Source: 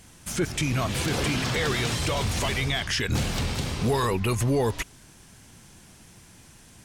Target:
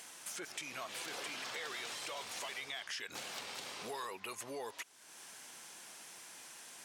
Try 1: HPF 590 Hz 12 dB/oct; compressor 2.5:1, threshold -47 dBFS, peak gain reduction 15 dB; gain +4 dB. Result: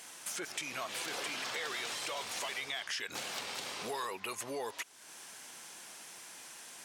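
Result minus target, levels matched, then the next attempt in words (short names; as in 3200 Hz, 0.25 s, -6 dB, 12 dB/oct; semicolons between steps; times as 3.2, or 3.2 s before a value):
compressor: peak gain reduction -4.5 dB
HPF 590 Hz 12 dB/oct; compressor 2.5:1, threshold -54.5 dBFS, peak gain reduction 19.5 dB; gain +4 dB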